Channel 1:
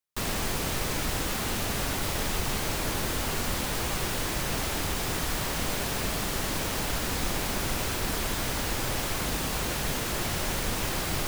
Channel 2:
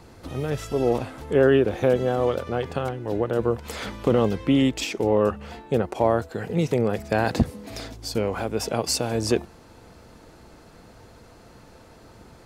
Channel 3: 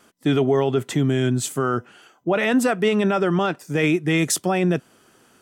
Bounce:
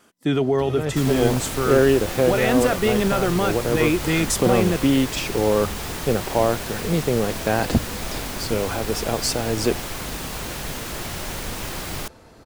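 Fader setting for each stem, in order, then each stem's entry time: −0.5, +1.0, −1.5 decibels; 0.80, 0.35, 0.00 seconds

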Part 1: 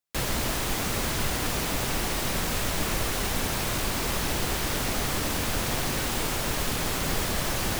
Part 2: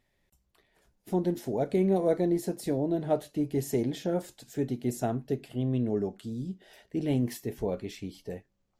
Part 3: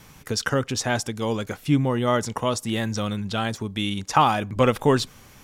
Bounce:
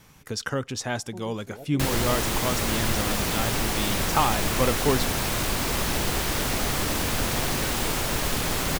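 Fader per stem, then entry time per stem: +2.0, −14.5, −5.0 decibels; 1.65, 0.00, 0.00 seconds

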